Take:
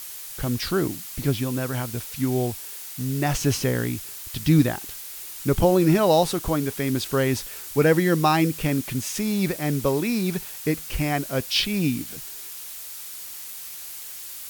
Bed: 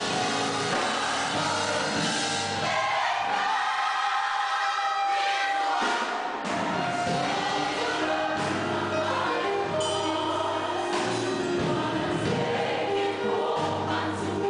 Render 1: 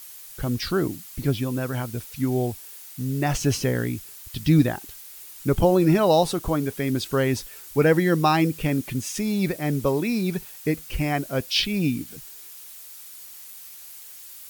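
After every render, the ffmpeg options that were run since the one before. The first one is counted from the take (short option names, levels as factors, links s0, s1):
-af "afftdn=nr=7:nf=-38"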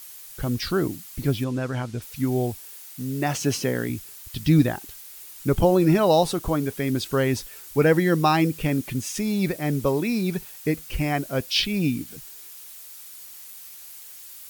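-filter_complex "[0:a]asettb=1/sr,asplit=3[s0][s1][s2];[s0]atrim=end=1.444[s3];[s1]atrim=start=1.44:end=2.02,asetpts=PTS-STARTPTS,afade=t=in:d=0.004:c=qsin,afade=t=out:st=0.576:d=0.004:c=qsin,lowpass=6600[s4];[s2]atrim=start=2.016[s5];[s3][s4]acrossfade=d=0.004:c1=hsin:c2=qsin[s6];[s6][s5]acrossfade=d=0.004:c1=qsin:c2=hsin,asettb=1/sr,asplit=3[s7][s8][s9];[s7]atrim=end=2.814[s10];[s8]atrim=start=2.81:end=3.9,asetpts=PTS-STARTPTS,afade=t=in:d=0.004:c=qsin,afade=t=out:st=1.086:d=0.004:c=qsin,highpass=150[s11];[s9]atrim=start=3.896[s12];[s10][s11]acrossfade=d=0.004:c1=hsin:c2=qsin[s13];[s13][s12]acrossfade=d=0.004:c1=qsin:c2=hsin"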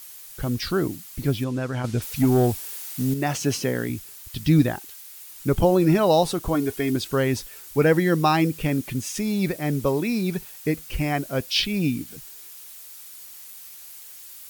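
-filter_complex "[0:a]asettb=1/sr,asplit=3[s0][s1][s2];[s0]atrim=end=1.844[s3];[s1]atrim=start=1.84:end=3.14,asetpts=PTS-STARTPTS,afade=t=in:d=0.004:c=qsin,afade=t=out:st=1.296:d=0.004:c=qsin,aeval=exprs='0.237*sin(PI/2*1.41*val(0)/0.237)':c=same[s4];[s2]atrim=start=3.136[s5];[s3][s4]acrossfade=d=0.004:c1=hsin:c2=qsin[s6];[s6][s5]acrossfade=d=0.004:c1=qsin:c2=hsin,asettb=1/sr,asplit=3[s7][s8][s9];[s7]atrim=end=4.804[s10];[s8]atrim=start=4.8:end=5.3,asetpts=PTS-STARTPTS,afade=t=in:d=0.004:c=qsin,afade=t=out:st=0.496:d=0.004:c=qsin,highpass=f=620:p=1[s11];[s9]atrim=start=5.296[s12];[s10][s11]acrossfade=d=0.004:c1=hsin:c2=qsin[s13];[s13][s12]acrossfade=d=0.004:c1=qsin:c2=hsin,asettb=1/sr,asplit=3[s14][s15][s16];[s14]atrim=end=6.544[s17];[s15]atrim=start=6.54:end=6.96,asetpts=PTS-STARTPTS,afade=t=in:d=0.004:c=qsin,afade=t=out:st=0.416:d=0.004:c=qsin,aecho=1:1:2.8:0.65,atrim=end_sample=18522[s18];[s16]atrim=start=6.956[s19];[s17][s18]acrossfade=d=0.004:c1=hsin:c2=qsin[s20];[s20][s19]acrossfade=d=0.004:c1=qsin:c2=hsin"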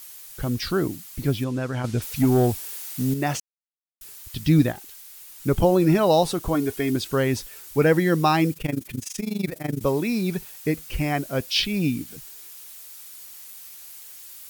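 -filter_complex "[0:a]asplit=3[s0][s1][s2];[s0]afade=t=out:st=4.71:d=0.02[s3];[s1]aeval=exprs='(tanh(63.1*val(0)+0.1)-tanh(0.1))/63.1':c=same,afade=t=in:st=4.71:d=0.02,afade=t=out:st=5.42:d=0.02[s4];[s2]afade=t=in:st=5.42:d=0.02[s5];[s3][s4][s5]amix=inputs=3:normalize=0,asettb=1/sr,asplit=3[s6][s7][s8];[s6]atrim=end=8.534[s9];[s7]atrim=start=8.53:end=9.81,asetpts=PTS-STARTPTS,afade=t=in:d=0.004:c=qsin,afade=t=out:st=1.276:d=0.004:c=qsin,tremolo=f=24:d=0.889[s10];[s8]atrim=start=9.806[s11];[s9][s10]acrossfade=d=0.004:c1=hsin:c2=qsin[s12];[s12][s11]acrossfade=d=0.004:c1=qsin:c2=hsin,asplit=3[s13][s14][s15];[s13]atrim=end=3.4,asetpts=PTS-STARTPTS,afade=t=out:st=3.396:d=0.004:c=hsin[s16];[s14]atrim=start=3.4:end=4.01,asetpts=PTS-STARTPTS,volume=0[s17];[s15]atrim=start=4.01,asetpts=PTS-STARTPTS,afade=t=in:d=0.004:c=hsin[s18];[s16][s17][s18]concat=n=3:v=0:a=1"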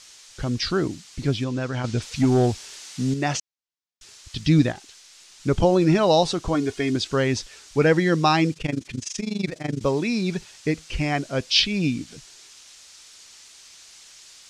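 -af "lowpass=f=6500:w=0.5412,lowpass=f=6500:w=1.3066,highshelf=f=3300:g=7.5"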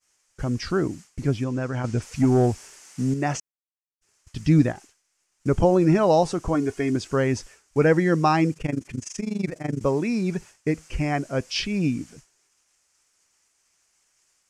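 -af "agate=range=0.0224:threshold=0.0141:ratio=3:detection=peak,equalizer=f=3800:t=o:w=0.84:g=-15"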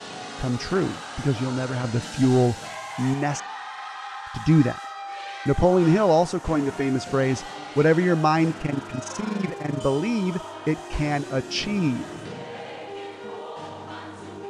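-filter_complex "[1:a]volume=0.335[s0];[0:a][s0]amix=inputs=2:normalize=0"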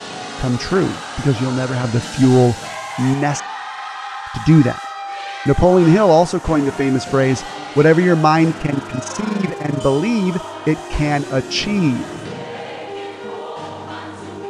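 -af "volume=2.24,alimiter=limit=0.891:level=0:latency=1"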